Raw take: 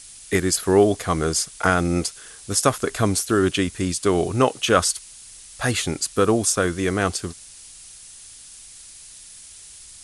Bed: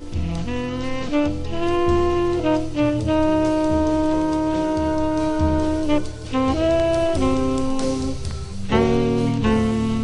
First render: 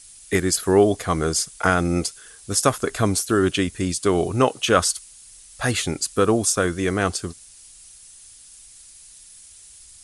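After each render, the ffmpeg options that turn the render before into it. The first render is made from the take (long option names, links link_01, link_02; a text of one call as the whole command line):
ffmpeg -i in.wav -af "afftdn=noise_reduction=6:noise_floor=-44" out.wav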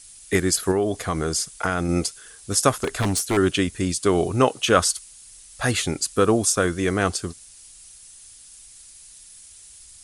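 ffmpeg -i in.wav -filter_complex "[0:a]asettb=1/sr,asplit=3[link_01][link_02][link_03];[link_01]atrim=end=0.714[link_04];[link_02]atrim=start=0.71:end=1.89,asetpts=PTS-STARTPTS,afade=type=in:duration=0.004:curve=qsin,afade=type=out:start_time=1.176:duration=0.004:curve=qsin,acompressor=threshold=-20dB:ratio=2.5:attack=3.2:release=140:knee=1:detection=peak[link_05];[link_03]atrim=start=1.886[link_06];[link_04][link_05]acrossfade=duration=0.004:curve1=hsin:curve2=qsin[link_07];[link_07][link_06]acrossfade=duration=0.004:curve1=qsin:curve2=hsin,asettb=1/sr,asplit=3[link_08][link_09][link_10];[link_08]atrim=end=2.724[link_11];[link_09]atrim=start=2.72:end=3.37,asetpts=PTS-STARTPTS,afade=type=in:duration=0.004:curve=qsin,afade=type=out:start_time=0.646:duration=0.004:curve=qsin,aeval=exprs='0.158*(abs(mod(val(0)/0.158+3,4)-2)-1)':channel_layout=same[link_12];[link_10]atrim=start=3.366[link_13];[link_11][link_12]acrossfade=duration=0.004:curve1=hsin:curve2=qsin[link_14];[link_14][link_13]acrossfade=duration=0.004:curve1=qsin:curve2=hsin" out.wav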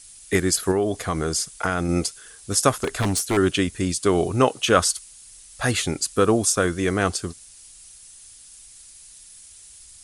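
ffmpeg -i in.wav -af anull out.wav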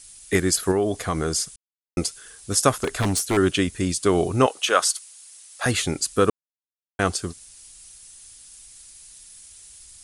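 ffmpeg -i in.wav -filter_complex "[0:a]asettb=1/sr,asplit=3[link_01][link_02][link_03];[link_01]atrim=end=4.464[link_04];[link_02]atrim=start=4.46:end=5.66,asetpts=PTS-STARTPTS,afade=type=in:duration=0.004:curve=qsin,afade=type=out:start_time=1.196:duration=0.004:curve=qsin,highpass=540[link_05];[link_03]atrim=start=5.656[link_06];[link_04][link_05]acrossfade=duration=0.004:curve1=hsin:curve2=qsin[link_07];[link_07][link_06]acrossfade=duration=0.004:curve1=qsin:curve2=hsin,asplit=5[link_08][link_09][link_10][link_11][link_12];[link_08]atrim=end=1.56,asetpts=PTS-STARTPTS,afade=type=out:start_time=1.556:duration=0.004:curve=hsin[link_13];[link_09]atrim=start=1.56:end=1.97,asetpts=PTS-STARTPTS,volume=0[link_14];[link_10]atrim=start=1.97:end=6.3,asetpts=PTS-STARTPTS,afade=type=in:duration=0.004:curve=hsin,afade=type=out:start_time=4.326:duration=0.004:curve=hsin[link_15];[link_11]atrim=start=6.3:end=6.99,asetpts=PTS-STARTPTS,volume=0[link_16];[link_12]atrim=start=6.99,asetpts=PTS-STARTPTS,afade=type=in:duration=0.004:curve=hsin[link_17];[link_13][link_14][link_15][link_16][link_17]concat=n=5:v=0:a=1" out.wav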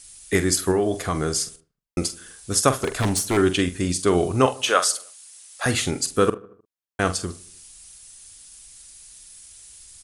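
ffmpeg -i in.wav -filter_complex "[0:a]asplit=2[link_01][link_02];[link_02]adelay=45,volume=-11dB[link_03];[link_01][link_03]amix=inputs=2:normalize=0,asplit=2[link_04][link_05];[link_05]adelay=77,lowpass=frequency=2000:poles=1,volume=-20dB,asplit=2[link_06][link_07];[link_07]adelay=77,lowpass=frequency=2000:poles=1,volume=0.55,asplit=2[link_08][link_09];[link_09]adelay=77,lowpass=frequency=2000:poles=1,volume=0.55,asplit=2[link_10][link_11];[link_11]adelay=77,lowpass=frequency=2000:poles=1,volume=0.55[link_12];[link_04][link_06][link_08][link_10][link_12]amix=inputs=5:normalize=0" out.wav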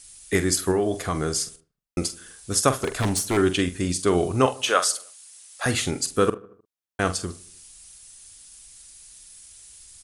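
ffmpeg -i in.wav -af "volume=-1.5dB" out.wav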